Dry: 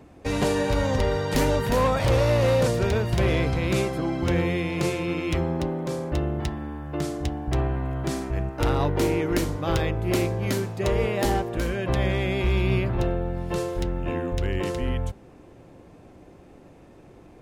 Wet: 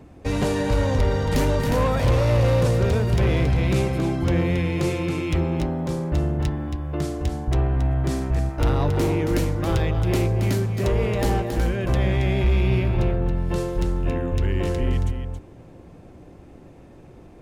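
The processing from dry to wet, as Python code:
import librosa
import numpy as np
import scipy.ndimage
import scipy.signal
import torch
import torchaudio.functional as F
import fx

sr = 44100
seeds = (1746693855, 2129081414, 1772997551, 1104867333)

p1 = x + fx.echo_single(x, sr, ms=274, db=-8.5, dry=0)
p2 = 10.0 ** (-16.5 / 20.0) * np.tanh(p1 / 10.0 ** (-16.5 / 20.0))
y = fx.low_shelf(p2, sr, hz=220.0, db=6.5)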